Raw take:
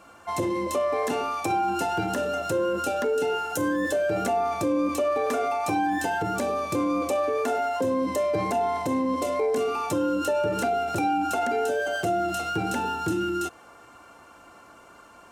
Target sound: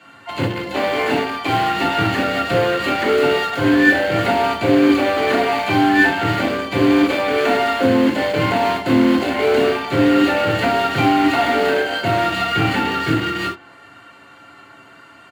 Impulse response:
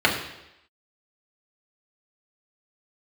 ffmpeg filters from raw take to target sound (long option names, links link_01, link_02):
-filter_complex "[0:a]equalizer=frequency=630:width=0.47:gain=-10,aecho=1:1:7.3:0.55,bandreject=frequency=69.29:width_type=h:width=4,bandreject=frequency=138.58:width_type=h:width=4,bandreject=frequency=207.87:width_type=h:width=4,bandreject=frequency=277.16:width_type=h:width=4,bandreject=frequency=346.45:width_type=h:width=4,bandreject=frequency=415.74:width_type=h:width=4,bandreject=frequency=485.03:width_type=h:width=4,bandreject=frequency=554.32:width_type=h:width=4,bandreject=frequency=623.61:width_type=h:width=4,bandreject=frequency=692.9:width_type=h:width=4,bandreject=frequency=762.19:width_type=h:width=4,bandreject=frequency=831.48:width_type=h:width=4,asplit=3[link_01][link_02][link_03];[link_02]asetrate=37084,aresample=44100,atempo=1.18921,volume=-15dB[link_04];[link_03]asetrate=58866,aresample=44100,atempo=0.749154,volume=-10dB[link_05];[link_01][link_04][link_05]amix=inputs=3:normalize=0,acrossover=split=130|4200[link_06][link_07][link_08];[link_08]acompressor=threshold=-52dB:ratio=6[link_09];[link_06][link_07][link_09]amix=inputs=3:normalize=0,lowshelf=frequency=66:gain=-7.5,asplit=2[link_10][link_11];[link_11]acrusher=bits=4:mix=0:aa=0.000001,volume=-3dB[link_12];[link_10][link_12]amix=inputs=2:normalize=0[link_13];[1:a]atrim=start_sample=2205,atrim=end_sample=3528[link_14];[link_13][link_14]afir=irnorm=-1:irlink=0,volume=-7dB"